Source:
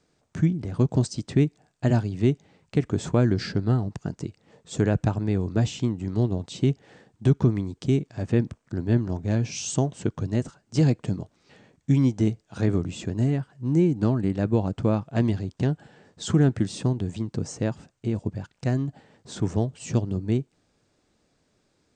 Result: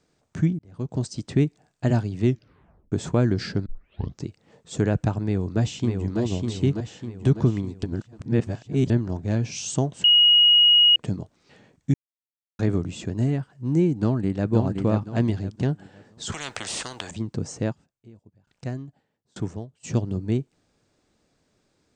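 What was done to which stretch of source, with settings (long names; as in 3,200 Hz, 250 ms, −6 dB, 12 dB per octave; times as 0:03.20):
0:00.59–0:01.26: fade in
0:02.25: tape stop 0.67 s
0:03.66: tape start 0.60 s
0:05.23–0:06.20: delay throw 600 ms, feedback 50%, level −4 dB
0:06.71–0:07.29: floating-point word with a short mantissa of 8 bits
0:07.83–0:08.90: reverse
0:10.04–0:10.96: beep over 2,890 Hz −12 dBFS
0:11.94–0:12.59: silence
0:13.99–0:14.51: delay throw 520 ms, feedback 30%, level −4.5 dB
0:16.32–0:17.11: every bin compressed towards the loudest bin 10 to 1
0:17.71–0:19.83: tremolo with a ramp in dB decaying 0.59 Hz → 1.8 Hz, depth 30 dB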